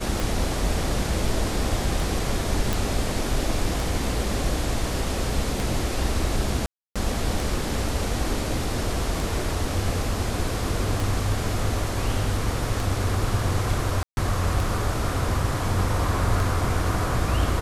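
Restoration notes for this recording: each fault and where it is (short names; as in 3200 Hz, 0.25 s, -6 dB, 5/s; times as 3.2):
tick 33 1/3 rpm
2.73 pop
6.66–6.96 gap 0.296 s
14.03–14.17 gap 0.141 s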